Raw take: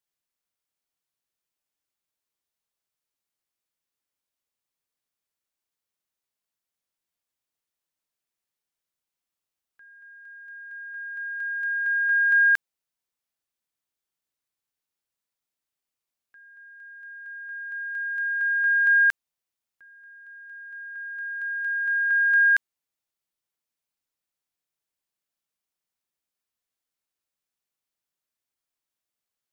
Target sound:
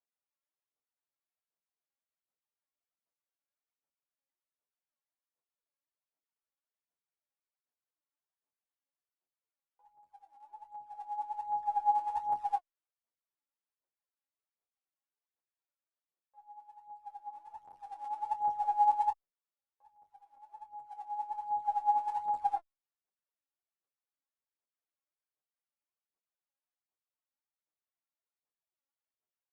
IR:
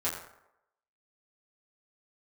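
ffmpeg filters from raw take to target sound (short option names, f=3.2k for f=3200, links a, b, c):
-filter_complex "[0:a]lowpass=1.6k,aderivative,acompressor=threshold=-38dB:ratio=6,aphaser=in_gain=1:out_gain=1:delay=1.9:decay=0.79:speed=1.3:type=sinusoidal,asetrate=22696,aresample=44100,atempo=1.94306,asplit=2[a][b];[b]adelay=22,volume=-10.5dB[c];[a][c]amix=inputs=2:normalize=0,asplit=2[d][e];[e]adelay=9.6,afreqshift=-0.4[f];[d][f]amix=inputs=2:normalize=1,volume=6.5dB"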